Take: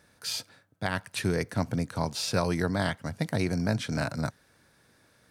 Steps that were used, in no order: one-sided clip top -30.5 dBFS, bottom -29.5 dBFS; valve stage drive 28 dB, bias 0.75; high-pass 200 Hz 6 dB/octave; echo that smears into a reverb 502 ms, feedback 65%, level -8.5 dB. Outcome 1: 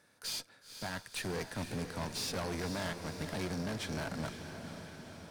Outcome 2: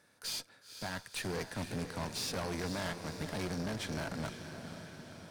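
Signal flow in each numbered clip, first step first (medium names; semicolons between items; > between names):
high-pass > one-sided clip > valve stage > echo that smears into a reverb; high-pass > one-sided clip > echo that smears into a reverb > valve stage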